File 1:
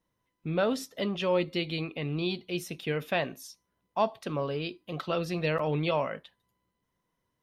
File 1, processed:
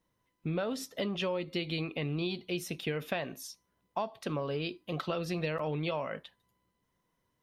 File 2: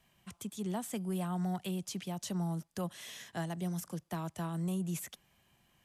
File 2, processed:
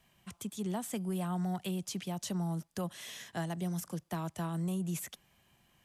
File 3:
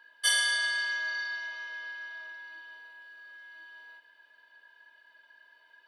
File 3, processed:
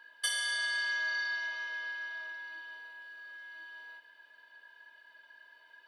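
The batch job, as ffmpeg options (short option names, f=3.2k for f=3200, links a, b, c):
-af "acompressor=threshold=-31dB:ratio=12,volume=1.5dB"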